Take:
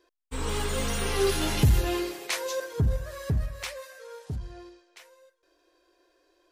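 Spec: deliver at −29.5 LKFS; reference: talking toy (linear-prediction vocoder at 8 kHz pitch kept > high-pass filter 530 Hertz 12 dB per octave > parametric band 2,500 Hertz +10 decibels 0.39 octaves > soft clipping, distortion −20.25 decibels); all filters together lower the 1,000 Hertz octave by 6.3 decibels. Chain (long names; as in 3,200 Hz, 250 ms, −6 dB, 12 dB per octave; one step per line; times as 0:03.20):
parametric band 1,000 Hz −8 dB
linear-prediction vocoder at 8 kHz pitch kept
high-pass filter 530 Hz 12 dB per octave
parametric band 2,500 Hz +10 dB 0.39 octaves
soft clipping −21.5 dBFS
level +4.5 dB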